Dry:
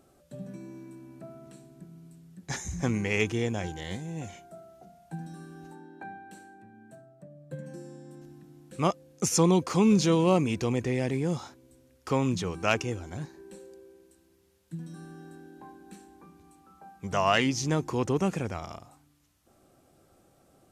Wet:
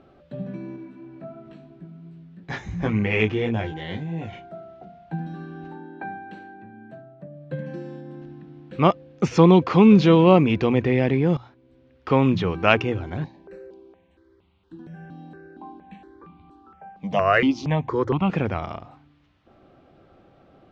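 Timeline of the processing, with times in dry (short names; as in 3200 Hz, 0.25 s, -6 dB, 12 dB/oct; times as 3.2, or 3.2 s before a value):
0.76–4.33 chorus 2.9 Hz, delay 17.5 ms, depth 2.2 ms
7.33–8.01 bell 4000 Hz +4.5 dB 2.7 oct
11.37–12.22 fade in linear, from -16.5 dB
13.24–18.3 step phaser 4.3 Hz 380–1700 Hz
whole clip: LPF 3500 Hz 24 dB/oct; notches 60/120 Hz; gain +8.5 dB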